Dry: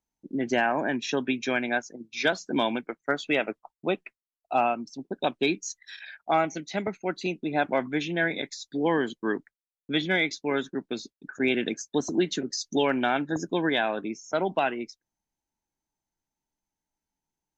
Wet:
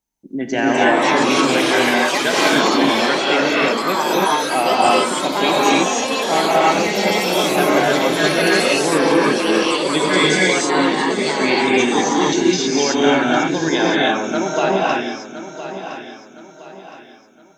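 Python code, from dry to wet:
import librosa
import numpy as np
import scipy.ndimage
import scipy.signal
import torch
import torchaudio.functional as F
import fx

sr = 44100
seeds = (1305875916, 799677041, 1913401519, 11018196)

p1 = fx.high_shelf(x, sr, hz=6100.0, db=6.0)
p2 = p1 + fx.echo_feedback(p1, sr, ms=1014, feedback_pct=37, wet_db=-12.0, dry=0)
p3 = fx.echo_pitch(p2, sr, ms=354, semitones=4, count=3, db_per_echo=-3.0)
p4 = fx.rev_gated(p3, sr, seeds[0], gate_ms=340, shape='rising', drr_db=-5.5)
y = F.gain(torch.from_numpy(p4), 3.0).numpy()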